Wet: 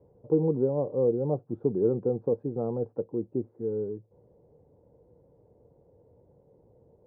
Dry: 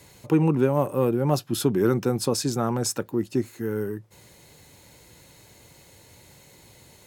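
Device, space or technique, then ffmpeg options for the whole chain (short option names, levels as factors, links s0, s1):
under water: -af "lowpass=f=750:w=0.5412,lowpass=f=750:w=1.3066,equalizer=f=470:t=o:w=0.35:g=11,volume=0.422"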